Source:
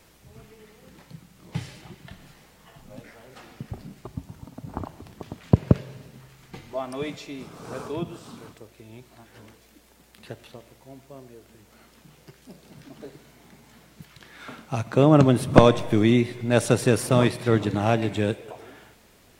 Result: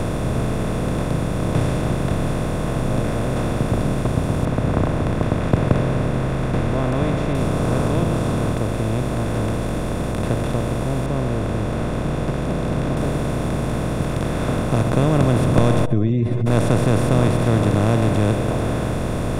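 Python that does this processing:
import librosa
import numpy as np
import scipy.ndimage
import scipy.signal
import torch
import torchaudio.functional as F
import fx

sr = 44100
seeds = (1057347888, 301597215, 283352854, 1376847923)

y = fx.lowpass_res(x, sr, hz=1900.0, q=2.2, at=(4.45, 7.35))
y = fx.lowpass(y, sr, hz=2600.0, slope=12, at=(11.06, 12.97))
y = fx.spec_expand(y, sr, power=3.1, at=(15.84, 16.46), fade=0.02)
y = fx.bin_compress(y, sr, power=0.2)
y = fx.low_shelf(y, sr, hz=170.0, db=10.5)
y = y * librosa.db_to_amplitude(-10.0)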